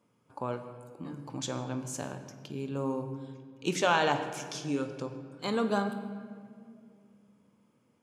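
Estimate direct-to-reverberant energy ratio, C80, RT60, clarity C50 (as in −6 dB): 7.0 dB, 10.0 dB, 2.3 s, 9.0 dB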